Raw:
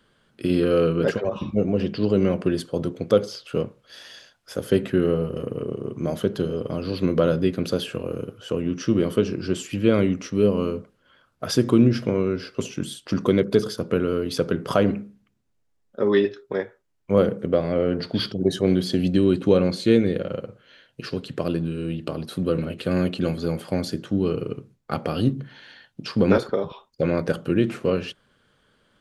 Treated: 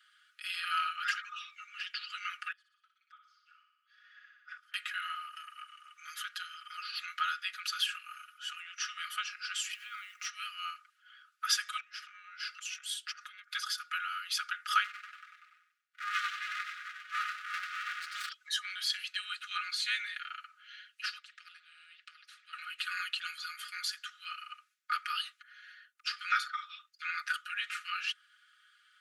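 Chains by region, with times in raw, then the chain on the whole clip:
2.52–4.74 band-pass 150 Hz, Q 1.8 + feedback echo 60 ms, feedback 55%, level -6 dB + three-band squash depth 100%
9.72–10.26 G.711 law mismatch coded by A + low shelf 86 Hz +9 dB + compressor 12:1, threshold -24 dBFS
11.8–13.55 compressor 16:1, threshold -27 dBFS + core saturation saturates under 570 Hz
14.84–18.29 echoes that change speed 0.19 s, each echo -1 st, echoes 3, each echo -6 dB + feedback echo 95 ms, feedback 39%, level -4 dB + running maximum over 65 samples
21.18–22.53 ladder band-pass 2000 Hz, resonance 20% + spectral compressor 2:1
25.42–26.07 bell 3600 Hz -12.5 dB 2.1 oct + hard clip -28 dBFS
whole clip: Chebyshev high-pass 1200 Hz, order 10; high shelf 4700 Hz -4.5 dB; comb 4.8 ms, depth 94%

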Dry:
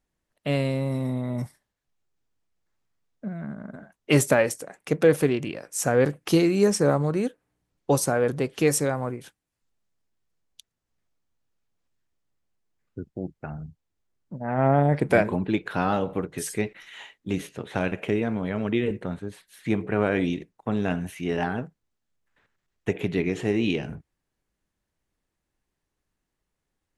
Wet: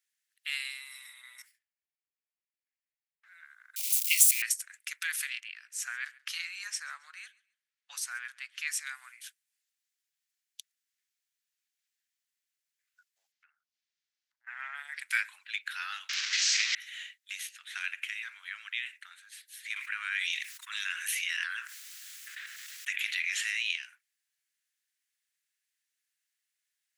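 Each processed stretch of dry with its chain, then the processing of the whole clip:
1.42–3.26 minimum comb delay 0.41 ms + high shelf 2500 Hz -11.5 dB + mismatched tape noise reduction decoder only
3.76–4.42 switching spikes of -21.5 dBFS + steep high-pass 2100 Hz 96 dB/oct + AM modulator 270 Hz, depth 10%
5.4–8.87 RIAA curve playback + feedback echo 0.136 s, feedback 25%, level -23 dB
13.32–14.47 resonant high shelf 7200 Hz -11 dB, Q 1.5 + compressor 8:1, threshold -49 dBFS
16.09–16.75 delta modulation 32 kbps, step -23.5 dBFS + tilt +2 dB/oct + doubler 44 ms -7.5 dB
19.76–23.63 brick-wall FIR high-pass 920 Hz + fast leveller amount 70%
whole clip: steep high-pass 1600 Hz 36 dB/oct; high shelf 4800 Hz +5.5 dB

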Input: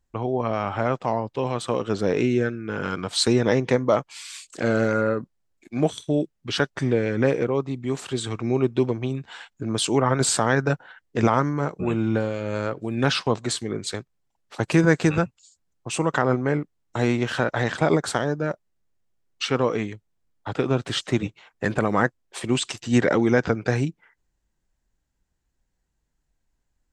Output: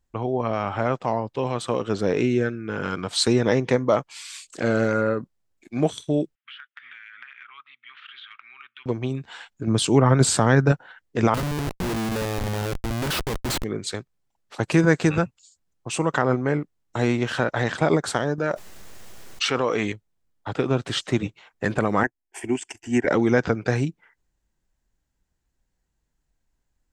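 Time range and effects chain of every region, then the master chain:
6.35–8.86 elliptic band-pass 1300–3300 Hz, stop band 50 dB + compressor 16:1, threshold -38 dBFS
9.67–10.72 HPF 49 Hz + low shelf 250 Hz +9.5 dB
11.34–13.64 HPF 170 Hz 6 dB/oct + low shelf 230 Hz +2 dB + Schmitt trigger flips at -28.5 dBFS
18.38–19.92 low shelf 310 Hz -9.5 dB + fast leveller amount 70%
22.03–23.07 transient shaper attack +1 dB, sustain -11 dB + fixed phaser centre 800 Hz, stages 8
whole clip: dry

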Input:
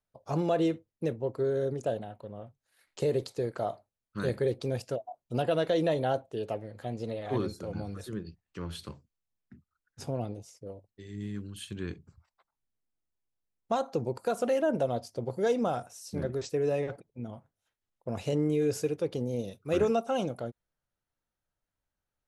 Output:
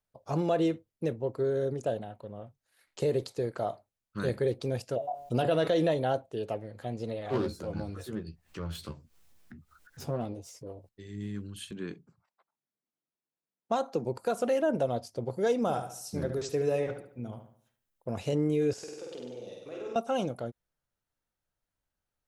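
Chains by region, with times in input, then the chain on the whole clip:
4.96–5.91 de-hum 142.5 Hz, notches 32 + fast leveller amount 50%
7.3–10.89 self-modulated delay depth 0.18 ms + doubler 13 ms -6.5 dB + upward compressor, threshold -41 dBFS
11.71–14.05 HPF 150 Hz 24 dB/oct + mismatched tape noise reduction decoder only
15.62–18.12 high shelf 11000 Hz +11.5 dB + darkening echo 72 ms, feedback 41%, low-pass 4800 Hz, level -8.5 dB
18.73–19.96 three-band isolator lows -18 dB, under 260 Hz, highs -21 dB, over 7900 Hz + compressor 4:1, threshold -43 dBFS + flutter echo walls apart 8.4 m, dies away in 1.2 s
whole clip: dry

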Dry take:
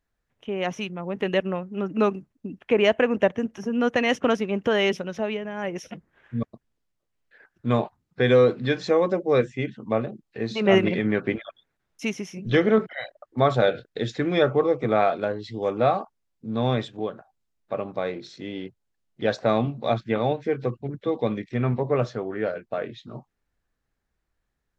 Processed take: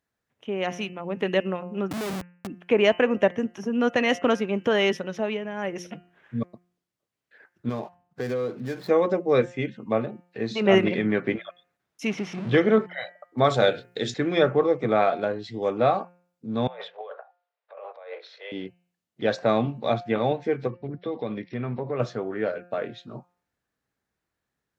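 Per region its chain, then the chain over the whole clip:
1.91–2.47 Schmitt trigger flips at -40.5 dBFS + compressor, threshold -29 dBFS
7.69–8.89 median filter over 15 samples + compressor 2.5:1, threshold -29 dBFS
12.07–12.58 zero-crossing step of -31 dBFS + LPF 3200 Hz
13.44–14.14 high shelf 4600 Hz +11.5 dB + notches 60/120/180/240/300/360/420 Hz
16.67–18.52 steep high-pass 460 Hz 72 dB/oct + air absorption 320 m + negative-ratio compressor -39 dBFS
20.67–22 compressor 2.5:1, threshold -27 dBFS + brick-wall FIR low-pass 5700 Hz
whole clip: HPF 110 Hz; de-hum 176.7 Hz, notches 17

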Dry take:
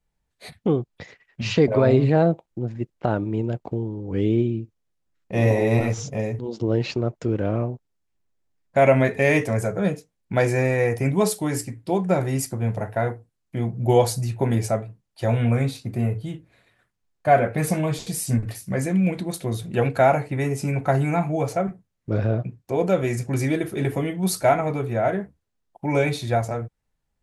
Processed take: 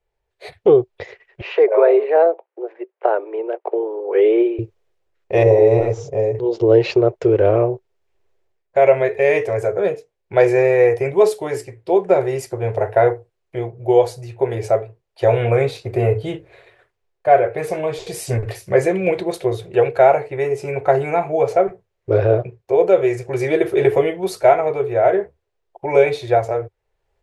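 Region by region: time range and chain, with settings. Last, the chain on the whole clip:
1.41–4.59 steep high-pass 310 Hz + three-band isolator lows -13 dB, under 480 Hz, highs -22 dB, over 2600 Hz
5.43–6.35 steep low-pass 8300 Hz + bell 2600 Hz -12 dB 2.7 oct
whole clip: EQ curve 100 Hz 0 dB, 260 Hz -17 dB, 380 Hz +12 dB, 1300 Hz +2 dB, 2400 Hz +4 dB, 10000 Hz -8 dB; AGC; gain -1 dB

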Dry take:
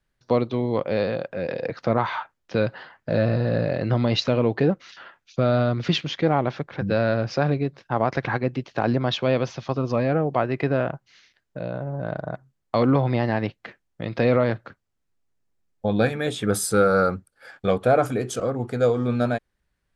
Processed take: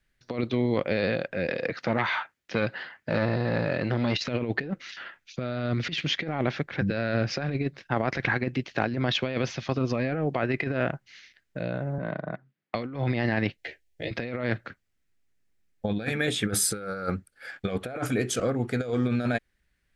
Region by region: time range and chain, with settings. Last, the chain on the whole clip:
1.49–4.27 HPF 120 Hz 6 dB/oct + core saturation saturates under 730 Hz
11.98–12.75 HPF 140 Hz 24 dB/oct + air absorption 210 m + core saturation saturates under 580 Hz
13.57–14.11 fixed phaser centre 490 Hz, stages 4 + doubler 13 ms -2 dB
whole clip: ten-band EQ 125 Hz -3 dB, 500 Hz -3 dB, 1000 Hz -7 dB, 2000 Hz +6 dB; negative-ratio compressor -26 dBFS, ratio -0.5

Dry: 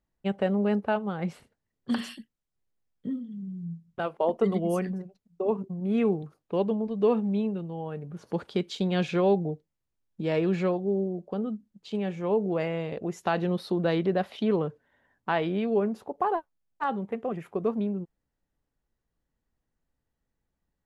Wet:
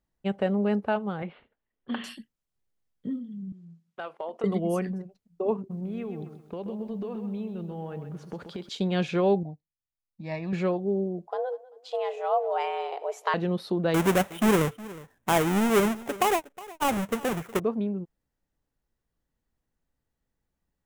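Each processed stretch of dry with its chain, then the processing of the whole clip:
1.22–2.04 steep low-pass 3500 Hz 48 dB/oct + bell 120 Hz -12 dB 1.6 oct
3.52–4.44 weighting filter A + compressor 3:1, threshold -32 dBFS
5.58–8.69 compressor 10:1, threshold -31 dBFS + lo-fi delay 0.129 s, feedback 35%, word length 11-bit, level -8.5 dB
9.43–10.53 fixed phaser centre 2100 Hz, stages 8 + upward expander, over -53 dBFS
11.27–13.34 frequency shift +260 Hz + feedback echo 0.195 s, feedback 34%, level -20 dB
13.94–17.6 half-waves squared off + bell 4500 Hz -11.5 dB 0.58 oct + echo 0.364 s -19 dB
whole clip: dry

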